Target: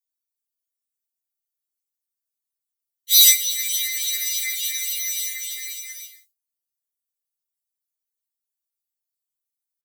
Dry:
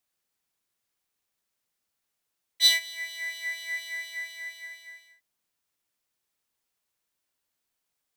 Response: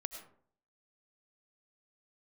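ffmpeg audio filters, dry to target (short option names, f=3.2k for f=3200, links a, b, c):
-filter_complex "[0:a]agate=range=-33dB:threshold=-54dB:ratio=3:detection=peak,aeval=exprs='0.398*(cos(1*acos(clip(val(0)/0.398,-1,1)))-cos(1*PI/2))+0.00398*(cos(3*acos(clip(val(0)/0.398,-1,1)))-cos(3*PI/2))+0.0126*(cos(4*acos(clip(val(0)/0.398,-1,1)))-cos(4*PI/2))+0.141*(cos(5*acos(clip(val(0)/0.398,-1,1)))-cos(5*PI/2))+0.00447*(cos(8*acos(clip(val(0)/0.398,-1,1)))-cos(8*PI/2))':c=same,asplit=2[a][b];[b]acompressor=threshold=-26dB:ratio=16,volume=-3dB[c];[a][c]amix=inputs=2:normalize=0,aexciter=amount=10.6:drive=8.7:freq=2k,aderivative,atempo=0.83,afftfilt=real='hypot(re,im)*cos(2*PI*random(0))':imag='hypot(re,im)*sin(2*PI*random(1))':win_size=512:overlap=0.75,afftfilt=real='re*3.46*eq(mod(b,12),0)':imag='im*3.46*eq(mod(b,12),0)':win_size=2048:overlap=0.75,volume=-8dB"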